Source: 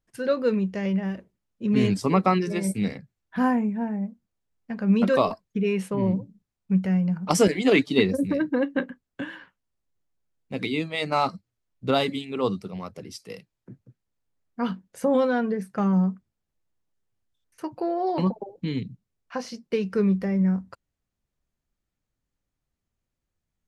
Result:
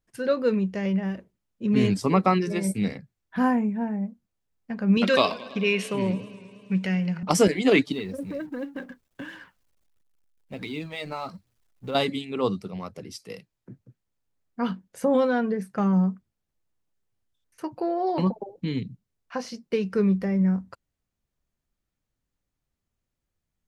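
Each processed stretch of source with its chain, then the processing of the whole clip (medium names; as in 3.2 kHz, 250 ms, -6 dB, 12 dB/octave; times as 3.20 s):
4.97–7.23 s: frequency weighting D + modulated delay 107 ms, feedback 76%, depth 109 cents, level -19.5 dB
7.92–11.95 s: companding laws mixed up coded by mu + compression 2.5:1, threshold -26 dBFS + flange 1.4 Hz, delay 0.2 ms, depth 2.1 ms, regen +69%
whole clip: none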